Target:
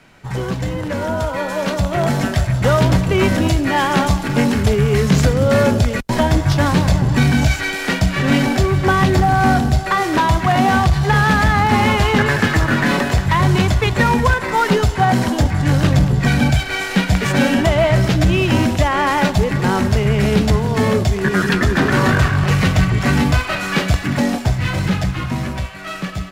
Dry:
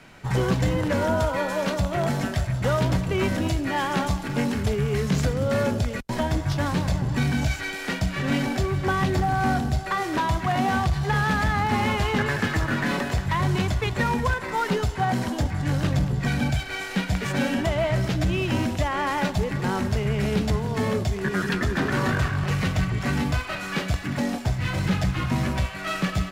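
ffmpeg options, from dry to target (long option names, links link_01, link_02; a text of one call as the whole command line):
ffmpeg -i in.wav -af "dynaudnorm=framelen=110:gausssize=31:maxgain=12dB" out.wav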